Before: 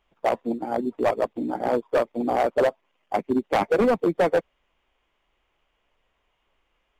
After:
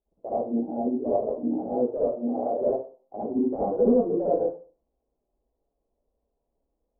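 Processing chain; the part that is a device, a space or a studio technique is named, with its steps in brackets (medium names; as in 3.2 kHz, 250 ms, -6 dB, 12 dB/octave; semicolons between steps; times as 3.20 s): 2.02–2.61 s: high-pass 240 Hz 6 dB/octave; next room (low-pass 590 Hz 24 dB/octave; reverberation RT60 0.40 s, pre-delay 50 ms, DRR -8 dB); tone controls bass -5 dB, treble -7 dB; trim -8.5 dB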